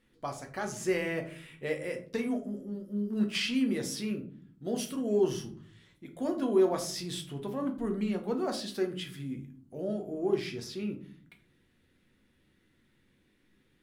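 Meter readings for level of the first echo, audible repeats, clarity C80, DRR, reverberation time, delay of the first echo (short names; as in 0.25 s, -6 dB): none, none, 15.5 dB, 3.0 dB, 0.45 s, none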